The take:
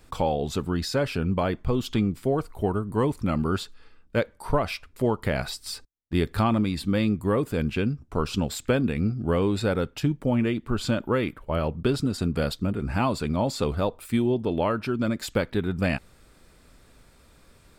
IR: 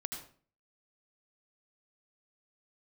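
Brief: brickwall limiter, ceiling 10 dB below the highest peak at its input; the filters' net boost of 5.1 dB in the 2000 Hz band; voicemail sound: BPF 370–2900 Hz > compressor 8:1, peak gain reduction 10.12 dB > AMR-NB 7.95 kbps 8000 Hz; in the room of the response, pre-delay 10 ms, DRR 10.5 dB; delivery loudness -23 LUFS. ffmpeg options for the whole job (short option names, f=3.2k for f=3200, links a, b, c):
-filter_complex "[0:a]equalizer=f=2k:t=o:g=8,alimiter=limit=-19dB:level=0:latency=1,asplit=2[a][b];[1:a]atrim=start_sample=2205,adelay=10[c];[b][c]afir=irnorm=-1:irlink=0,volume=-10.5dB[d];[a][d]amix=inputs=2:normalize=0,highpass=370,lowpass=2.9k,acompressor=threshold=-34dB:ratio=8,volume=17.5dB" -ar 8000 -c:a libopencore_amrnb -b:a 7950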